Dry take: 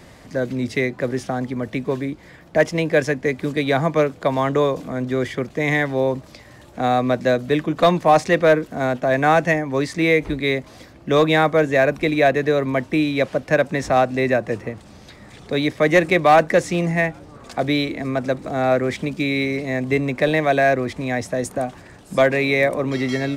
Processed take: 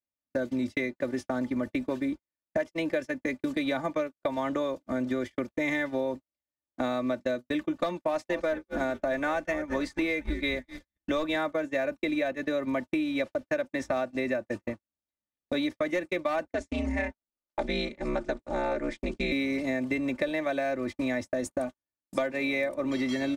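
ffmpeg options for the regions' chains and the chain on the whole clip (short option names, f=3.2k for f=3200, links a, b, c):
-filter_complex "[0:a]asettb=1/sr,asplit=3[a][b][c];[a]atrim=end=8.014[d];[b]atrim=start=8.01:end=11.36,asetpts=PTS-STARTPTS,afade=t=in:d=0.004:c=qsin,afade=t=out:st=3.346:d=0.004:c=qsin,asubboost=boost=9:cutoff=57,asplit=5[e][f][g][h][i];[f]adelay=227,afreqshift=-110,volume=-14.5dB[j];[g]adelay=454,afreqshift=-220,volume=-21.1dB[k];[h]adelay=681,afreqshift=-330,volume=-27.6dB[l];[i]adelay=908,afreqshift=-440,volume=-34.2dB[m];[e][j][k][l][m]amix=inputs=5:normalize=0,atrim=end_sample=147735[n];[c]atrim=start=11.356[o];[d][n]acrossfade=d=0.004:c1=hsin:c2=qsin[p];[p][o]acrossfade=d=0.004:c1=qsin:c2=hsin,asettb=1/sr,asplit=3[q][r][s];[q]atrim=end=16.454[t];[r]atrim=start=16.45:end=19.32,asetpts=PTS-STARTPTS,afade=t=in:d=0.004:c=qsin,afade=t=out:st=2.866:d=0.004:c=qsin,lowpass=f=9k:w=0.5412,lowpass=f=9k:w=1.3066,bandreject=f=60:t=h:w=6,bandreject=f=120:t=h:w=6,bandreject=f=180:t=h:w=6,bandreject=f=240:t=h:w=6,bandreject=f=300:t=h:w=6,aeval=exprs='val(0)*sin(2*PI*100*n/s)':c=same[u];[s]atrim=start=19.316[v];[t][u]acrossfade=d=0.004:c1=hsin:c2=qsin[w];[w][v]acrossfade=d=0.004:c1=qsin:c2=hsin,aecho=1:1:3.4:0.7,acompressor=threshold=-23dB:ratio=12,agate=range=-57dB:threshold=-29dB:ratio=16:detection=peak,volume=-2.5dB"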